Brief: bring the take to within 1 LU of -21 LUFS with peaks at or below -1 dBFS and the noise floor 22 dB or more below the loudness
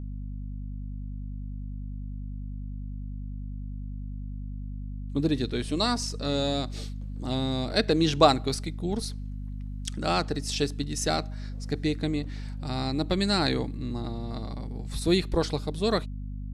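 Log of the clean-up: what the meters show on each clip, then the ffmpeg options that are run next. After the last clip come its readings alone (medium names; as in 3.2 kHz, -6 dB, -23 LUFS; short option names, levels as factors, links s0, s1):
hum 50 Hz; highest harmonic 250 Hz; hum level -33 dBFS; loudness -30.0 LUFS; peak level -3.5 dBFS; loudness target -21.0 LUFS
-> -af "bandreject=f=50:t=h:w=4,bandreject=f=100:t=h:w=4,bandreject=f=150:t=h:w=4,bandreject=f=200:t=h:w=4,bandreject=f=250:t=h:w=4"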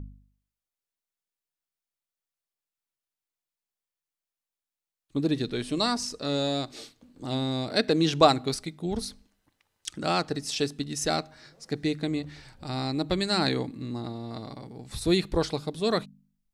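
hum not found; loudness -28.0 LUFS; peak level -3.0 dBFS; loudness target -21.0 LUFS
-> -af "volume=2.24,alimiter=limit=0.891:level=0:latency=1"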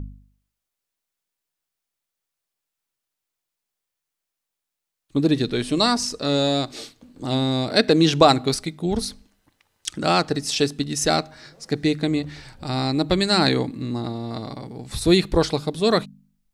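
loudness -21.5 LUFS; peak level -1.0 dBFS; noise floor -84 dBFS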